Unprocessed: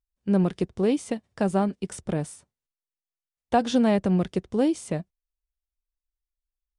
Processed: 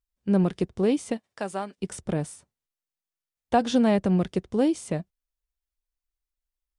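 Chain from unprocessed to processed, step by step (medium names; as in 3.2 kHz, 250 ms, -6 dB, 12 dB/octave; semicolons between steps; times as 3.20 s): 1.16–1.77 s: high-pass 570 Hz -> 1.4 kHz 6 dB/octave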